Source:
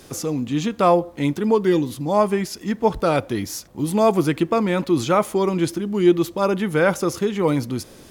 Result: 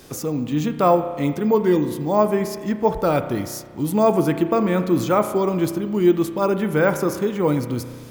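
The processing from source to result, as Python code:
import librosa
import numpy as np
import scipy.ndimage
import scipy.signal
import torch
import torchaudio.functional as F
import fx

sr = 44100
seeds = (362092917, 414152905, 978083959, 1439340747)

y = fx.dynamic_eq(x, sr, hz=3500.0, q=0.75, threshold_db=-40.0, ratio=4.0, max_db=-5)
y = np.repeat(y[::2], 2)[:len(y)]
y = fx.rev_spring(y, sr, rt60_s=1.7, pass_ms=(33,), chirp_ms=75, drr_db=9.0)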